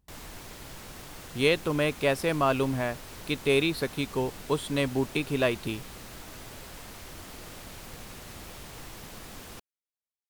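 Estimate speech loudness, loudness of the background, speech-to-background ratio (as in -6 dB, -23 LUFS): -28.0 LUFS, -43.5 LUFS, 15.5 dB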